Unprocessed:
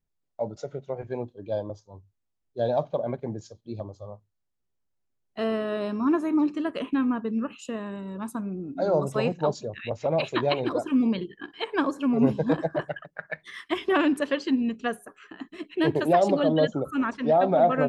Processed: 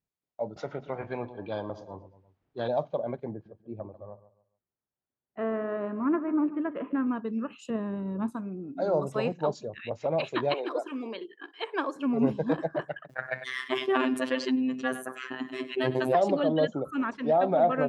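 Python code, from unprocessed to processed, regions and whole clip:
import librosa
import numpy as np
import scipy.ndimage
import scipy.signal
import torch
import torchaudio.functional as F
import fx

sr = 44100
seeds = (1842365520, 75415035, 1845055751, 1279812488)

y = fx.chain(x, sr, fx.spacing_loss(db_at_10k=32),
    fx.echo_feedback(ms=114, feedback_pct=50, wet_db=-22.0),
    fx.spectral_comp(ratio=2.0), at=(0.56, 2.68))
y = fx.chain(y, sr, fx.self_delay(depth_ms=0.095),
    fx.lowpass(hz=2000.0, slope=24),
    fx.echo_feedback(ms=143, feedback_pct=29, wet_db=-15), at=(3.31, 7.07))
y = fx.chain(y, sr, fx.tilt_eq(slope=-3.0),
    fx.transient(attack_db=7, sustain_db=2), at=(7.7, 8.32))
y = fx.chain(y, sr, fx.highpass(hz=340.0, slope=24),
    fx.quant_float(bits=8), at=(10.54, 11.96))
y = fx.chain(y, sr, fx.robotise(hz=129.0),
    fx.echo_single(ms=98, db=-22.0),
    fx.env_flatten(amount_pct=50), at=(13.09, 16.15))
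y = fx.highpass(y, sr, hz=140.0, slope=6)
y = fx.high_shelf(y, sr, hz=5200.0, db=-7.0)
y = y * 10.0 ** (-2.5 / 20.0)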